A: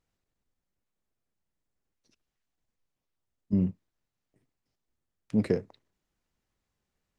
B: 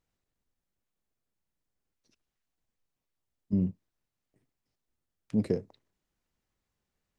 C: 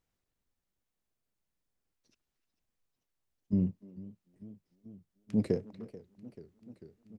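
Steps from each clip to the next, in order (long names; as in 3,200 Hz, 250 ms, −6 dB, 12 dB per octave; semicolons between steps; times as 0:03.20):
dynamic equaliser 1,700 Hz, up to −8 dB, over −50 dBFS, Q 0.72; level −1.5 dB
far-end echo of a speakerphone 300 ms, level −17 dB; feedback echo with a swinging delay time 441 ms, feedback 78%, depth 186 cents, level −18.5 dB; level −1 dB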